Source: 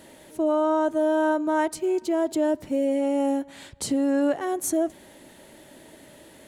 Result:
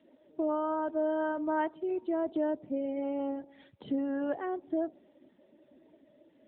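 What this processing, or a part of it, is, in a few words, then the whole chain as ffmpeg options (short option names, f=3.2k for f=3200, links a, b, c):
mobile call with aggressive noise cancelling: -filter_complex "[0:a]asplit=3[a][b][c];[a]afade=t=out:st=3.74:d=0.02[d];[b]highshelf=f=11k:g=5,afade=t=in:st=3.74:d=0.02,afade=t=out:st=4.33:d=0.02[e];[c]afade=t=in:st=4.33:d=0.02[f];[d][e][f]amix=inputs=3:normalize=0,highpass=110,afftdn=nr=14:nf=-41,volume=-6dB" -ar 8000 -c:a libopencore_amrnb -b:a 10200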